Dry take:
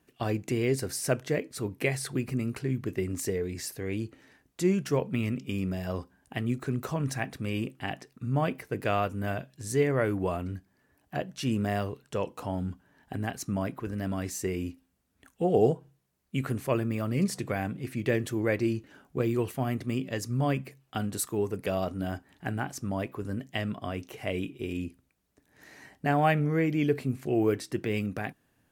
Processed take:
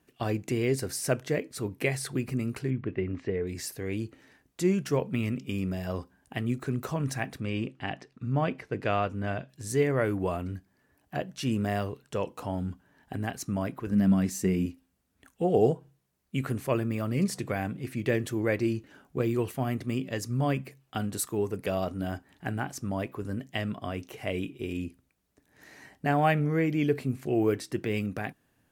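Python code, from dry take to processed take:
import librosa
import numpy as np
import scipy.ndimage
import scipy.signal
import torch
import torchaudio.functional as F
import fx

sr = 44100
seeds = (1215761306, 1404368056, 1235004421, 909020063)

y = fx.lowpass(x, sr, hz=3000.0, slope=24, at=(2.7, 3.47))
y = fx.lowpass(y, sr, hz=5200.0, slope=12, at=(7.4, 9.49))
y = fx.peak_eq(y, sr, hz=200.0, db=13.5, octaves=0.57, at=(13.91, 14.66))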